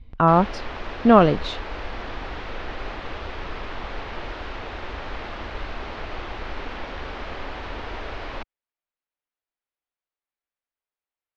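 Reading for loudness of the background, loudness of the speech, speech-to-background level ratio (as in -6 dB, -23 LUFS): -34.5 LUFS, -18.5 LUFS, 16.0 dB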